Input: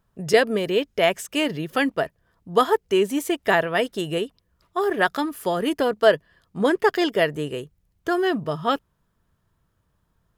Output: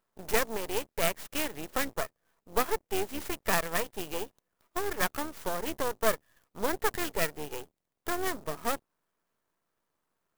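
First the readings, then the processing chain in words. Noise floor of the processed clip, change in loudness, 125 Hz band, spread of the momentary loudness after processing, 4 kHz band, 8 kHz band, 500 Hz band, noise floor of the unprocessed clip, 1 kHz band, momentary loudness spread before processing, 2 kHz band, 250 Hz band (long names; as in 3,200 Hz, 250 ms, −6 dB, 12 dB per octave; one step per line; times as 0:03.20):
−84 dBFS, −9.5 dB, −10.5 dB, 9 LU, −9.5 dB, +2.0 dB, −12.0 dB, −70 dBFS, −9.0 dB, 9 LU, −9.0 dB, −13.5 dB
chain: sub-octave generator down 2 octaves, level +3 dB
high-pass filter 380 Hz 12 dB per octave
dynamic equaliser 1,900 Hz, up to +5 dB, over −39 dBFS, Q 5.7
in parallel at +1 dB: downward compressor, threshold −29 dBFS, peak gain reduction 17.5 dB
on the sum: half-wave rectification
converter with an unsteady clock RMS 0.06 ms
level −7.5 dB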